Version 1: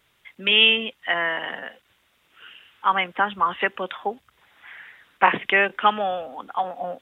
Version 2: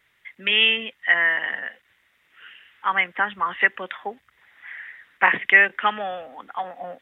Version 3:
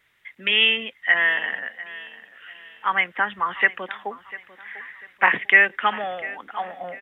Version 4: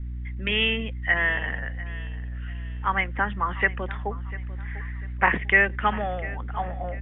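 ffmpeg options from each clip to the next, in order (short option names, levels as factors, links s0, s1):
-af "equalizer=f=1900:t=o:w=0.6:g=12.5,volume=0.562"
-af "aecho=1:1:696|1392|2088:0.126|0.0466|0.0172"
-af "aeval=exprs='val(0)+0.00631*(sin(2*PI*60*n/s)+sin(2*PI*2*60*n/s)/2+sin(2*PI*3*60*n/s)/3+sin(2*PI*4*60*n/s)/4+sin(2*PI*5*60*n/s)/5)':c=same,aemphasis=mode=reproduction:type=riaa,volume=0.794"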